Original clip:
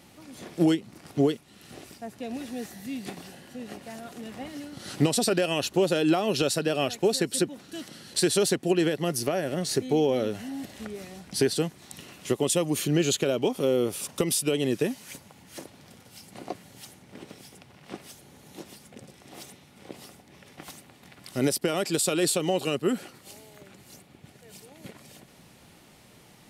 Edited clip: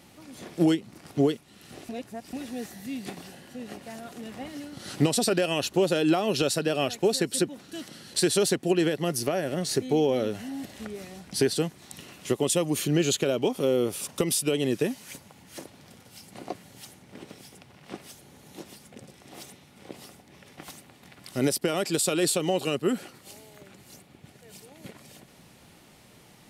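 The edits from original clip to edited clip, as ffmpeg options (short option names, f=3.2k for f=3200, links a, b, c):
-filter_complex "[0:a]asplit=3[a][b][c];[a]atrim=end=1.892[d];[b]atrim=start=1.888:end=2.332,asetpts=PTS-STARTPTS,areverse[e];[c]atrim=start=2.328[f];[d][e]acrossfade=d=0.004:c1=hsin:c2=hsin[g];[g][f]acrossfade=d=0.004:c1=hsin:c2=hsin"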